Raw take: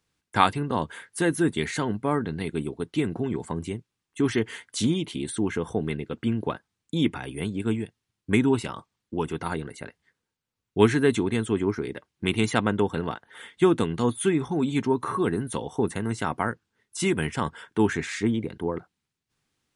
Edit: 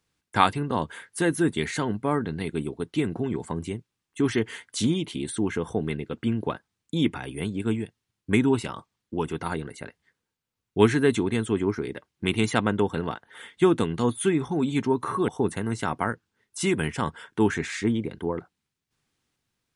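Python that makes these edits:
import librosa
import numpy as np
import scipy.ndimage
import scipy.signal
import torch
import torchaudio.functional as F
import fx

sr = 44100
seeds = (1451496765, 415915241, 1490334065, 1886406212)

y = fx.edit(x, sr, fx.cut(start_s=15.28, length_s=0.39), tone=tone)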